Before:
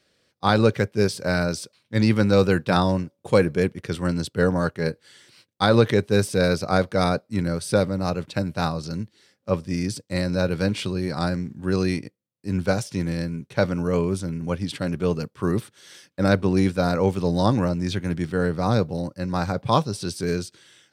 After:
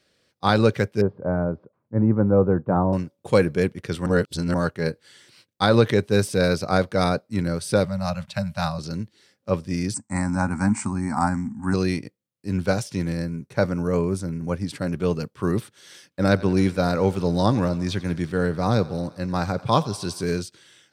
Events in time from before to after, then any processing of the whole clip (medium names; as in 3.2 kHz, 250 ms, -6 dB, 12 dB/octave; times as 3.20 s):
1.01–2.93 s: low-pass 1.1 kHz 24 dB/octave
4.06–4.54 s: reverse
7.85–8.79 s: elliptic band-stop 210–570 Hz
9.94–11.74 s: FFT filter 110 Hz 0 dB, 160 Hz -5 dB, 230 Hz +11 dB, 480 Hz -20 dB, 840 Hz +13 dB, 1.6 kHz +1 dB, 2.2 kHz -1 dB, 3.3 kHz -27 dB, 8.2 kHz +14 dB, 13 kHz -29 dB
13.12–14.93 s: peaking EQ 3.2 kHz -9 dB 0.69 oct
16.25–20.40 s: thinning echo 89 ms, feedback 73%, level -19 dB